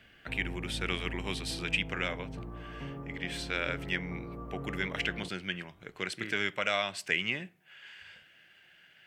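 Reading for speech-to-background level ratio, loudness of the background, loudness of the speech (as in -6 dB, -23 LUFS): 8.5 dB, -42.5 LUFS, -34.0 LUFS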